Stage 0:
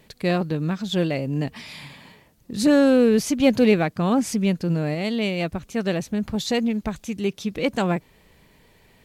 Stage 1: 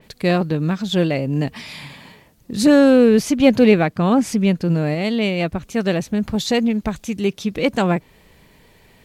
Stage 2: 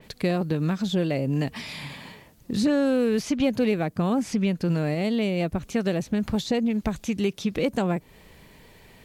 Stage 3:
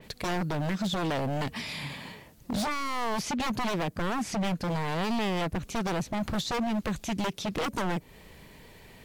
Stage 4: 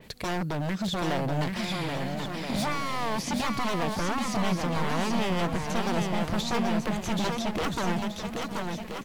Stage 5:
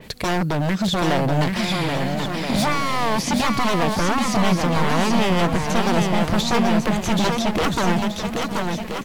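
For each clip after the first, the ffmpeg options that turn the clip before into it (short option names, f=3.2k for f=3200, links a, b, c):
-af "adynamicequalizer=threshold=0.00891:dfrequency=4000:dqfactor=0.7:tfrequency=4000:tqfactor=0.7:attack=5:release=100:ratio=0.375:range=2.5:mode=cutabove:tftype=highshelf,volume=4.5dB"
-filter_complex "[0:a]acrossover=split=780|6600[a][b][c];[a]acompressor=threshold=-22dB:ratio=4[d];[b]acompressor=threshold=-35dB:ratio=4[e];[c]acompressor=threshold=-50dB:ratio=4[f];[d][e][f]amix=inputs=3:normalize=0"
-af "aeval=exprs='0.0631*(abs(mod(val(0)/0.0631+3,4)-2)-1)':c=same"
-af "aecho=1:1:780|1326|1708|1976|2163:0.631|0.398|0.251|0.158|0.1"
-af "volume=8.5dB" -ar 48000 -c:a aac -b:a 192k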